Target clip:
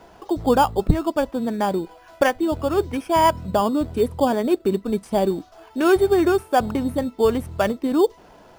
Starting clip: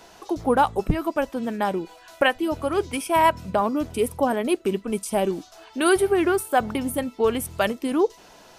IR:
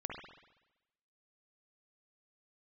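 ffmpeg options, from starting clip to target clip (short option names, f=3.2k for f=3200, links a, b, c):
-filter_complex "[0:a]lowpass=f=1.5k:p=1,equalizer=f=62:t=o:w=1.6:g=4,asplit=2[a][b];[b]acrusher=samples=11:mix=1:aa=0.000001,volume=-6.5dB[c];[a][c]amix=inputs=2:normalize=0"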